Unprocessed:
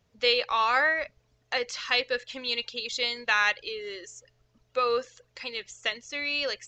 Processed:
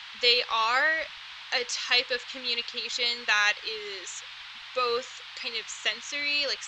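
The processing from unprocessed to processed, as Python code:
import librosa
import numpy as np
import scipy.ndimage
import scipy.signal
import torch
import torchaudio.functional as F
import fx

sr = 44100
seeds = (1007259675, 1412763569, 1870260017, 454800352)

y = fx.high_shelf(x, sr, hz=6400.0, db=-11.0, at=(2.24, 3.06))
y = fx.dmg_noise_band(y, sr, seeds[0], low_hz=870.0, high_hz=3800.0, level_db=-45.0)
y = fx.high_shelf(y, sr, hz=3100.0, db=11.5)
y = y * librosa.db_to_amplitude(-3.0)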